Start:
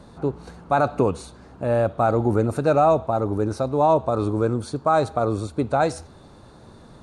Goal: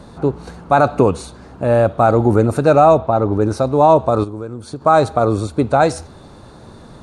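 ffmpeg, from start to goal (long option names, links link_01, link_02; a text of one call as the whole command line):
ffmpeg -i in.wav -filter_complex "[0:a]asplit=3[link_01][link_02][link_03];[link_01]afade=type=out:start_time=2.97:duration=0.02[link_04];[link_02]lowpass=4700,afade=type=in:start_time=2.97:duration=0.02,afade=type=out:start_time=3.4:duration=0.02[link_05];[link_03]afade=type=in:start_time=3.4:duration=0.02[link_06];[link_04][link_05][link_06]amix=inputs=3:normalize=0,asplit=3[link_07][link_08][link_09];[link_07]afade=type=out:start_time=4.23:duration=0.02[link_10];[link_08]acompressor=threshold=-31dB:ratio=10,afade=type=in:start_time=4.23:duration=0.02,afade=type=out:start_time=4.8:duration=0.02[link_11];[link_09]afade=type=in:start_time=4.8:duration=0.02[link_12];[link_10][link_11][link_12]amix=inputs=3:normalize=0,volume=7dB" out.wav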